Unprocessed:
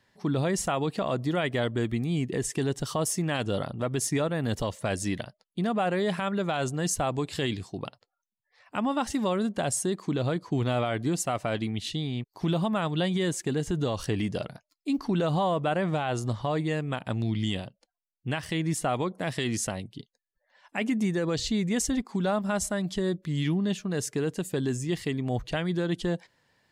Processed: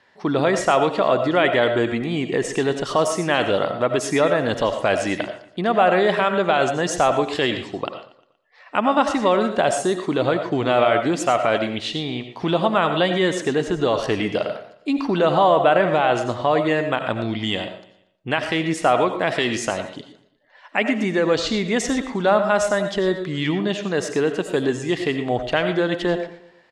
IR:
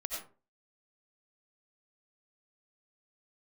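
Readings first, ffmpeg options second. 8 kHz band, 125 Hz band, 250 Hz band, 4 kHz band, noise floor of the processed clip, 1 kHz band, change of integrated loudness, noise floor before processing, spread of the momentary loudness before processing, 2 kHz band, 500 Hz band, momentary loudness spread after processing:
+1.0 dB, 0.0 dB, +5.0 dB, +8.5 dB, -55 dBFS, +12.0 dB, +8.5 dB, -84 dBFS, 5 LU, +11.5 dB, +11.5 dB, 8 LU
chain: -filter_complex "[0:a]lowpass=7.5k,bass=f=250:g=-14,treble=f=4k:g=-9,aecho=1:1:118|236|354|472:0.112|0.0505|0.0227|0.0102,asplit=2[a][b];[1:a]atrim=start_sample=2205[c];[b][c]afir=irnorm=-1:irlink=0,volume=-3.5dB[d];[a][d]amix=inputs=2:normalize=0,volume=8dB"

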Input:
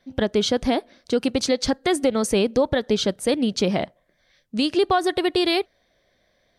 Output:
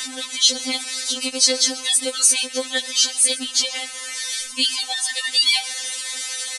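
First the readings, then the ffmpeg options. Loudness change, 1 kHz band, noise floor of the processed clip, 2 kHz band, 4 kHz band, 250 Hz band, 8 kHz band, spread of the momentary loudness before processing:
+3.5 dB, -9.5 dB, -34 dBFS, +4.0 dB, +9.5 dB, -12.0 dB, +16.5 dB, 6 LU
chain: -filter_complex "[0:a]aeval=exprs='val(0)+0.5*0.0422*sgn(val(0))':c=same,acrossover=split=200|1100[a][b][c];[c]acontrast=67[d];[a][b][d]amix=inputs=3:normalize=0,aresample=22050,aresample=44100,crystalizer=i=9.5:c=0,lowshelf=f=220:g=-11,asplit=2[e][f];[f]aecho=0:1:131:0.112[g];[e][g]amix=inputs=2:normalize=0,afftfilt=real='re*3.46*eq(mod(b,12),0)':imag='im*3.46*eq(mod(b,12),0)':win_size=2048:overlap=0.75,volume=-11dB"

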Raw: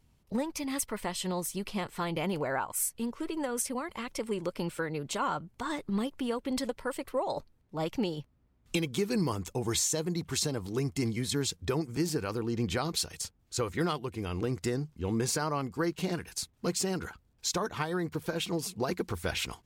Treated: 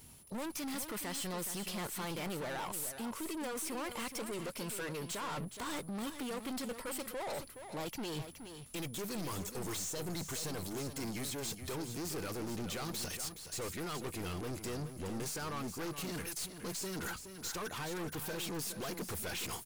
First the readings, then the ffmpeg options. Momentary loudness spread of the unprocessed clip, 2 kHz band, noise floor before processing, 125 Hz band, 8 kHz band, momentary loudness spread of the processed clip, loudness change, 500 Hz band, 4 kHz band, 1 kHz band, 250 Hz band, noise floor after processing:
6 LU, -5.0 dB, -68 dBFS, -8.5 dB, -5.5 dB, 3 LU, -7.0 dB, -8.5 dB, -5.5 dB, -7.0 dB, -8.0 dB, -50 dBFS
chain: -filter_complex "[0:a]aemphasis=mode=production:type=50kf,deesser=0.5,lowshelf=f=82:g=-11,areverse,acompressor=threshold=-39dB:ratio=6,areverse,aeval=exprs='val(0)+0.000316*sin(2*PI*10000*n/s)':c=same,aeval=exprs='(tanh(282*val(0)+0.2)-tanh(0.2))/282':c=same,asplit=2[a][b];[b]aecho=0:1:420:0.335[c];[a][c]amix=inputs=2:normalize=0,volume=11dB"

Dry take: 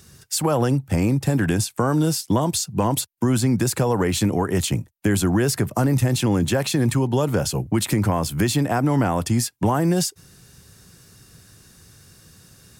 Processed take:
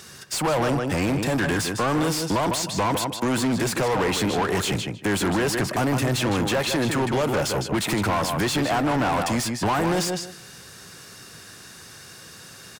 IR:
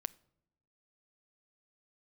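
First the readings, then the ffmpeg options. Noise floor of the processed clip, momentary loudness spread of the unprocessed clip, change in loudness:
-44 dBFS, 3 LU, -2.0 dB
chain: -filter_complex "[0:a]asplit=2[a][b];[b]adelay=155,lowpass=f=3.3k:p=1,volume=-8dB,asplit=2[c][d];[d]adelay=155,lowpass=f=3.3k:p=1,volume=0.16,asplit=2[e][f];[f]adelay=155,lowpass=f=3.3k:p=1,volume=0.16[g];[a][c][e][g]amix=inputs=4:normalize=0,asplit=2[h][i];[i]highpass=f=720:p=1,volume=25dB,asoftclip=type=tanh:threshold=-9dB[j];[h][j]amix=inputs=2:normalize=0,lowpass=f=3.9k:p=1,volume=-6dB,volume=-6.5dB"

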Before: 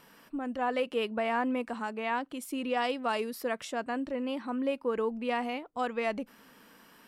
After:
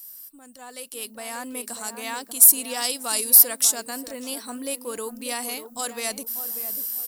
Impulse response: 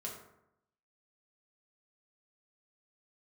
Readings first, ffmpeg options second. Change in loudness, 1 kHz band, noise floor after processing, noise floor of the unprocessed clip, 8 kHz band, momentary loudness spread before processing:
+13.5 dB, -3.0 dB, -48 dBFS, -58 dBFS, +31.5 dB, 6 LU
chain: -filter_complex "[0:a]highshelf=f=8.1k:g=10,asplit=2[a][b];[b]adelay=590,lowpass=f=900:p=1,volume=-9dB,asplit=2[c][d];[d]adelay=590,lowpass=f=900:p=1,volume=0.39,asplit=2[e][f];[f]adelay=590,lowpass=f=900:p=1,volume=0.39,asplit=2[g][h];[h]adelay=590,lowpass=f=900:p=1,volume=0.39[i];[c][e][g][i]amix=inputs=4:normalize=0[j];[a][j]amix=inputs=2:normalize=0,crystalizer=i=4.5:c=0,volume=16dB,asoftclip=hard,volume=-16dB,dynaudnorm=f=390:g=7:m=13dB,aexciter=amount=5.6:drive=2.6:freq=3.9k,volume=-15.5dB"

